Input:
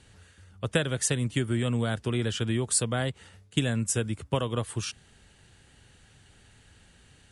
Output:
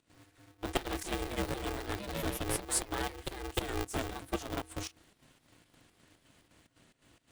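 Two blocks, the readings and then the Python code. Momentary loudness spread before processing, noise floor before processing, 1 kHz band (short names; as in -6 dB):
9 LU, -59 dBFS, -0.5 dB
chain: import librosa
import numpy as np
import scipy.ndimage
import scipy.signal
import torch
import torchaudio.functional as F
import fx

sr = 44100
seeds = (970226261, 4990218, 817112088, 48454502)

y = fx.hum_notches(x, sr, base_hz=60, count=4)
y = fx.volume_shaper(y, sr, bpm=117, per_beat=2, depth_db=-16, release_ms=94.0, shape='slow start')
y = fx.echo_pitch(y, sr, ms=84, semitones=2, count=3, db_per_echo=-6.0)
y = y * np.sign(np.sin(2.0 * np.pi * 200.0 * np.arange(len(y)) / sr))
y = F.gain(torch.from_numpy(y), -6.5).numpy()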